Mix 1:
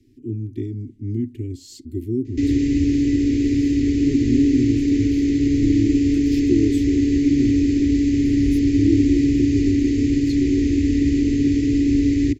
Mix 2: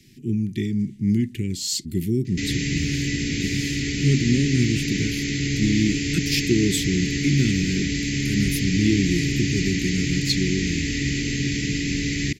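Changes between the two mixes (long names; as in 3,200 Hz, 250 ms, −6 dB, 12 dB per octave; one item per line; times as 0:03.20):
background −7.0 dB
master: remove drawn EQ curve 110 Hz 0 dB, 180 Hz −27 dB, 260 Hz +5 dB, 1,300 Hz −15 dB, 2,100 Hz −17 dB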